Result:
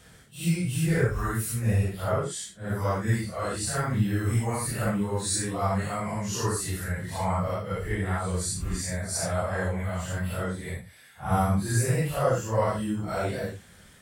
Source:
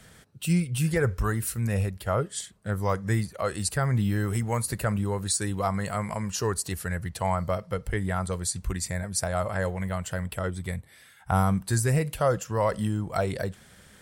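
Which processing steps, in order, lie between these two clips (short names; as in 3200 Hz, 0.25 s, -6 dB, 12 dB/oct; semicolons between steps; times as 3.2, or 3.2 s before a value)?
phase scrambler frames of 0.2 s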